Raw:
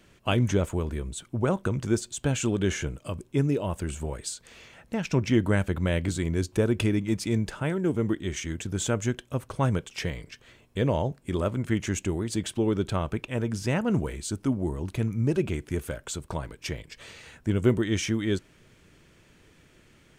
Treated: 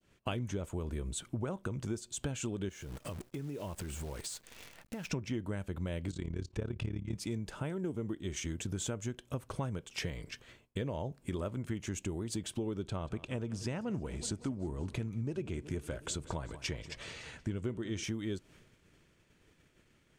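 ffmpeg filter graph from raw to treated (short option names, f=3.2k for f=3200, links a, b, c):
-filter_complex "[0:a]asettb=1/sr,asplit=3[a][b][c];[a]atrim=end=2.694[d];[b]atrim=start=2.69:end=5.1,asetpts=PTS-STARTPTS,afade=t=in:d=0.004:c=qsin,afade=t=out:st=2.406:d=0.004:c=qsin,acrusher=bits=8:dc=4:mix=0:aa=0.000001,acompressor=threshold=-37dB:ratio=6:attack=3.2:release=140:knee=1:detection=peak[e];[c]atrim=start=5.096[f];[d][e]acrossfade=d=0.004:c1=hsin:c2=qsin[g];[g][f]acrossfade=d=0.004:c1=qsin:c2=hsin,asettb=1/sr,asplit=3[h][i][j];[h]atrim=end=6.114[k];[i]atrim=start=6.11:end=7.15,asetpts=PTS-STARTPTS,afade=t=in:d=0.004:c=qsin,afade=t=out:st=1.036:d=0.004:c=qsin,lowpass=5.8k,asubboost=boost=8.5:cutoff=150,tremolo=f=35:d=0.857[l];[j]atrim=start=7.146[m];[k][l]acrossfade=d=0.004:c1=hsin:c2=qsin[n];[n][m]acrossfade=d=0.004:c1=qsin:c2=hsin,asettb=1/sr,asplit=3[o][p][q];[o]atrim=end=12.834[r];[p]atrim=start=12.83:end=18.04,asetpts=PTS-STARTPTS,afade=t=in:d=0.004:c=qsin,afade=t=out:st=5.206:d=0.004:c=qsin,lowpass=9.1k,aecho=1:1:185|370|555|740|925:0.112|0.0651|0.0377|0.0219|0.0127,atrim=end_sample=229761[s];[q]atrim=start=18.036[t];[r][s]acrossfade=d=0.004:c1=hsin:c2=qsin[u];[u][t]acrossfade=d=0.004:c1=qsin:c2=hsin,agate=range=-33dB:threshold=-49dB:ratio=3:detection=peak,adynamicequalizer=threshold=0.00398:dfrequency=1800:dqfactor=1.4:tfrequency=1800:tqfactor=1.4:attack=5:release=100:ratio=0.375:range=2.5:mode=cutabove:tftype=bell,acompressor=threshold=-34dB:ratio=6"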